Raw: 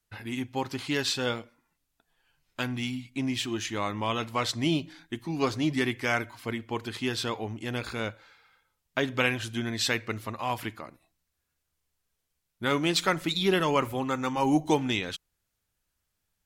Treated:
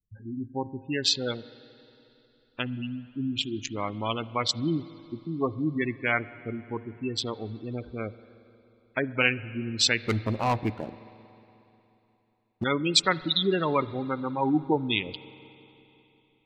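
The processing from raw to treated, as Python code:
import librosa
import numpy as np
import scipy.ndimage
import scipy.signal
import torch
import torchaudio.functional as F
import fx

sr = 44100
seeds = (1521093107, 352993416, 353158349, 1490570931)

y = fx.wiener(x, sr, points=41)
y = fx.spec_gate(y, sr, threshold_db=-15, keep='strong')
y = fx.high_shelf(y, sr, hz=2300.0, db=11.0)
y = fx.leveller(y, sr, passes=3, at=(10.05, 12.64))
y = fx.rev_spring(y, sr, rt60_s=3.3, pass_ms=(45, 60), chirp_ms=35, drr_db=17.0)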